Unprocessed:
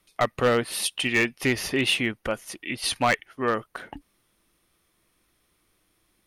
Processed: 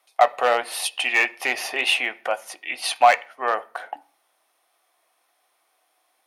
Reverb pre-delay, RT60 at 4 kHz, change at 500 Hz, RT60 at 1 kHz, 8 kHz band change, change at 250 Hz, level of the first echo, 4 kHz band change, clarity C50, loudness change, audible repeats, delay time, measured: 3 ms, 0.55 s, +2.0 dB, 0.40 s, 0.0 dB, -13.5 dB, none, +1.5 dB, 21.0 dB, +3.5 dB, none, none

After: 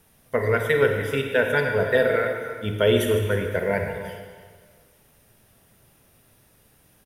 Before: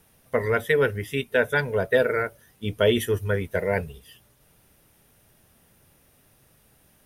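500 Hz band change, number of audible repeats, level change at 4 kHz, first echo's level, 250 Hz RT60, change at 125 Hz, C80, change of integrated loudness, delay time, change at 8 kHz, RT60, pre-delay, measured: +2.0 dB, 1, +1.5 dB, -15.0 dB, 1.6 s, +2.0 dB, 5.0 dB, +1.5 dB, 0.304 s, +1.5 dB, 1.8 s, 35 ms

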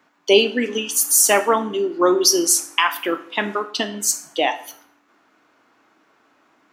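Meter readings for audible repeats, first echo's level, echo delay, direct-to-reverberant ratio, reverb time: none, none, none, 10.5 dB, 0.55 s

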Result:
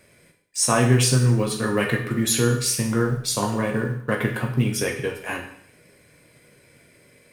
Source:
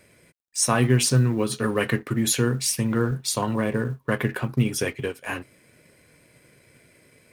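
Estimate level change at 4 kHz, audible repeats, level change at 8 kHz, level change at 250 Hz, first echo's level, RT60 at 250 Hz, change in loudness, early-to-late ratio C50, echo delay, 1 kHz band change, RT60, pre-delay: +2.0 dB, none, +2.0 dB, +1.0 dB, none, 0.65 s, +2.0 dB, 7.5 dB, none, +2.0 dB, 0.65 s, 10 ms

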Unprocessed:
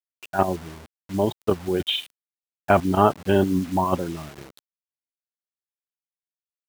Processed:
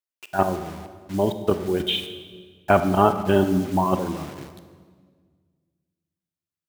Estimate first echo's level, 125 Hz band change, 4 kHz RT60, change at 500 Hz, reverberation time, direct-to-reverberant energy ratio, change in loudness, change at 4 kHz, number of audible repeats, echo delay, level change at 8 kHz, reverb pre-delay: none, +0.5 dB, 1.3 s, +1.0 dB, 1.7 s, 9.0 dB, +0.5 dB, +0.5 dB, none, none, +0.5 dB, 28 ms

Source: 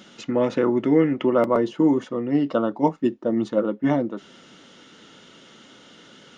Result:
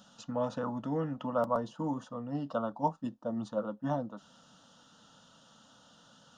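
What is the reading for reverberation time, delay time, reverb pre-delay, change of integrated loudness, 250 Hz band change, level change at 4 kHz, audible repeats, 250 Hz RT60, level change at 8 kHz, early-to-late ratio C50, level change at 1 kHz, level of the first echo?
none, none, none, -13.0 dB, -15.0 dB, -12.0 dB, none, none, n/a, none, -6.5 dB, none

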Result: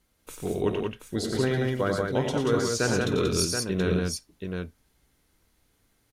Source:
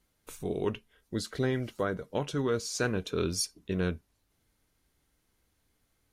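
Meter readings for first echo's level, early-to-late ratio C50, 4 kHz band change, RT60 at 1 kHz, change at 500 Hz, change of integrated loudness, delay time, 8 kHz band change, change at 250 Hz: -17.5 dB, none, +6.0 dB, none, +6.0 dB, +5.5 dB, 51 ms, +6.0 dB, +6.0 dB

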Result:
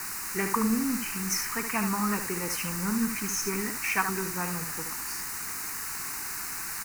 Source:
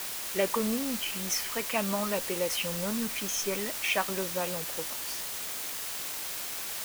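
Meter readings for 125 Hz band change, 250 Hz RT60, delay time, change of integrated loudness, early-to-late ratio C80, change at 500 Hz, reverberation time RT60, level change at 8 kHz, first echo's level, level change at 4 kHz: +5.0 dB, none, 73 ms, +1.5 dB, none, -5.0 dB, none, +2.0 dB, -7.5 dB, -4.0 dB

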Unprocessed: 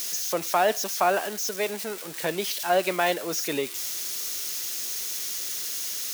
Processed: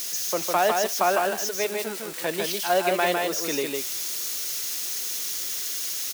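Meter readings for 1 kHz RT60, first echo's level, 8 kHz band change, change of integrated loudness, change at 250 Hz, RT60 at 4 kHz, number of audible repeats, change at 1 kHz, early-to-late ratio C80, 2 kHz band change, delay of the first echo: none, -3.5 dB, +1.5 dB, +1.5 dB, +1.5 dB, none, 1, +1.5 dB, none, +1.5 dB, 0.154 s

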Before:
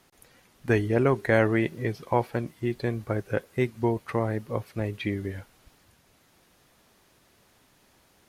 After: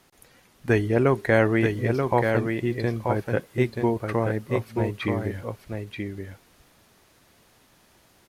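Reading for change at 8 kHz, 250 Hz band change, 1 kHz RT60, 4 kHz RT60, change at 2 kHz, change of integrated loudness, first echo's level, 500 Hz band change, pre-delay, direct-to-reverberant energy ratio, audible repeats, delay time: n/a, +3.0 dB, none, none, +3.0 dB, +2.5 dB, -5.0 dB, +3.0 dB, none, none, 1, 0.932 s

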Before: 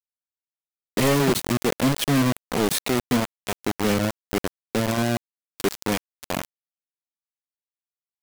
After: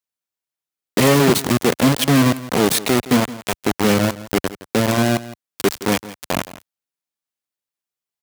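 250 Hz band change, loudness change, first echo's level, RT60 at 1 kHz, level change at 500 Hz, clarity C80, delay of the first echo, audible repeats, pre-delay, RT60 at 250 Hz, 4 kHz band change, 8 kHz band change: +6.0 dB, +6.0 dB, -16.5 dB, none, +6.0 dB, none, 0.167 s, 1, none, none, +6.0 dB, +6.0 dB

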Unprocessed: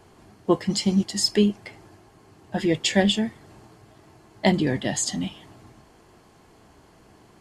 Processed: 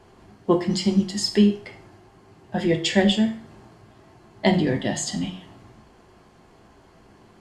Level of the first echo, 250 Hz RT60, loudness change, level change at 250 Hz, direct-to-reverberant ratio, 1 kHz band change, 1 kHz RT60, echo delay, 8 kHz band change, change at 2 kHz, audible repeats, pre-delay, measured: none, 0.45 s, +1.0 dB, +2.0 dB, 5.0 dB, +0.5 dB, 0.45 s, none, -3.5 dB, +0.5 dB, none, 6 ms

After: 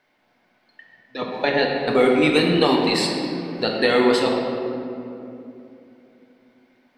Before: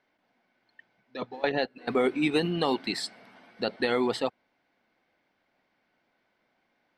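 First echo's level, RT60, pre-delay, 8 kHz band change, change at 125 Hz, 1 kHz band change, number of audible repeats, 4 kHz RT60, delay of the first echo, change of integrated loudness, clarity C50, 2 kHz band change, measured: none, 2.8 s, 7 ms, +9.5 dB, +9.5 dB, +9.0 dB, none, 1.4 s, none, +9.0 dB, 2.0 dB, +10.0 dB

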